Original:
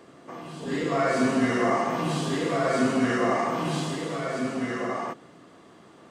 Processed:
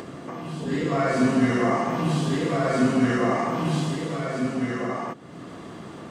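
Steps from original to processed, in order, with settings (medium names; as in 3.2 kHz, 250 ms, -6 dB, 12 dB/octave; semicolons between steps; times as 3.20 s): upward compressor, threshold -30 dBFS; tone controls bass +7 dB, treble -1 dB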